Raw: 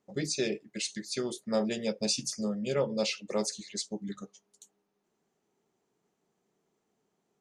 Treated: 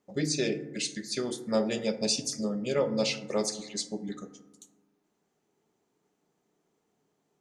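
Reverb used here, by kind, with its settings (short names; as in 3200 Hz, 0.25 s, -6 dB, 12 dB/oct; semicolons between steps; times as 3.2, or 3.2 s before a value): FDN reverb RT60 1.1 s, low-frequency decay 1.4×, high-frequency decay 0.35×, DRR 9 dB; gain +1.5 dB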